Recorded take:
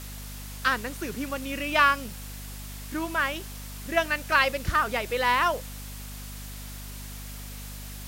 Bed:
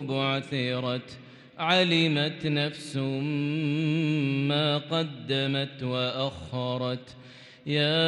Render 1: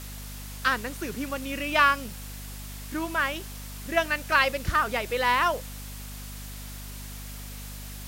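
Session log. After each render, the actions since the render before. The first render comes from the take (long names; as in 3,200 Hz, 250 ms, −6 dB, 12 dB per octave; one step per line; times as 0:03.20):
no processing that can be heard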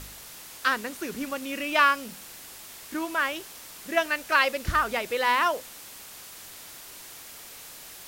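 hum removal 50 Hz, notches 5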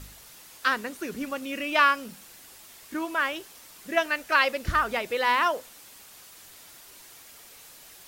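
broadband denoise 6 dB, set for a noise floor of −45 dBFS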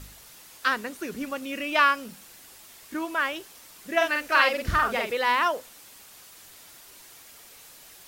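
0:03.96–0:05.12: double-tracking delay 47 ms −3 dB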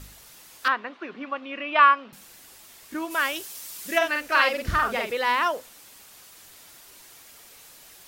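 0:00.68–0:02.13: loudspeaker in its box 310–3,400 Hz, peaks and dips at 450 Hz −5 dB, 730 Hz +3 dB, 1,100 Hz +7 dB
0:03.10–0:03.97: high-shelf EQ 4,600 Hz → 2,600 Hz +12 dB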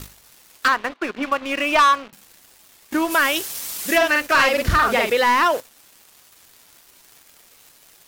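leveller curve on the samples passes 3
downward compressor 2 to 1, threshold −16 dBFS, peak gain reduction 5 dB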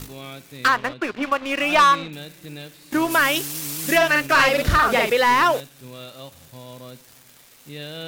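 mix in bed −10.5 dB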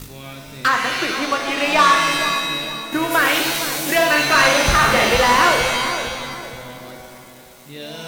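feedback echo with a low-pass in the loop 462 ms, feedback 49%, low-pass 830 Hz, level −7 dB
reverb with rising layers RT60 1.2 s, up +7 semitones, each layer −2 dB, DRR 3.5 dB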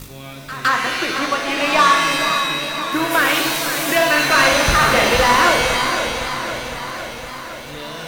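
echo ahead of the sound 162 ms −14.5 dB
feedback echo with a swinging delay time 510 ms, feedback 68%, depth 90 cents, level −11 dB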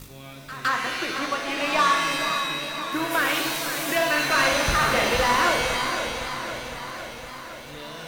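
level −7 dB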